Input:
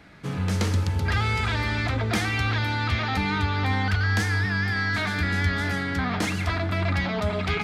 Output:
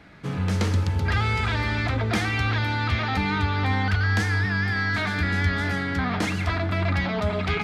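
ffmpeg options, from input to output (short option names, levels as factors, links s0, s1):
-af "highshelf=f=6200:g=-6.5,volume=1.12"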